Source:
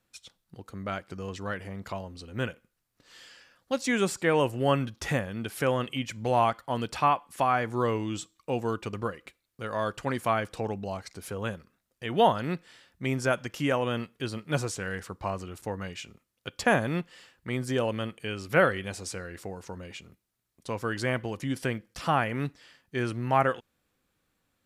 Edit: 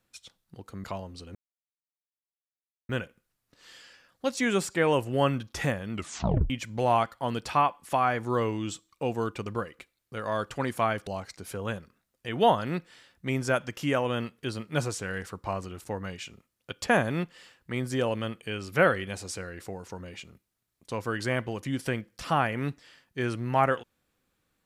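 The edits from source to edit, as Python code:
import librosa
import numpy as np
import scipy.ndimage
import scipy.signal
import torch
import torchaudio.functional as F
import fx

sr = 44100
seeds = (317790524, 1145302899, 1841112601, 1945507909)

y = fx.edit(x, sr, fx.cut(start_s=0.84, length_s=1.01),
    fx.insert_silence(at_s=2.36, length_s=1.54),
    fx.tape_stop(start_s=5.39, length_s=0.58),
    fx.cut(start_s=10.54, length_s=0.3), tone=tone)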